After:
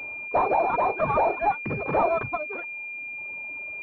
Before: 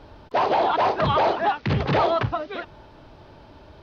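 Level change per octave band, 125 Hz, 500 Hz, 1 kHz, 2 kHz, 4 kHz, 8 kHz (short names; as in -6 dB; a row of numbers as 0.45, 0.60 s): -10.0 dB, -2.0 dB, -2.0 dB, +2.0 dB, under -20 dB, n/a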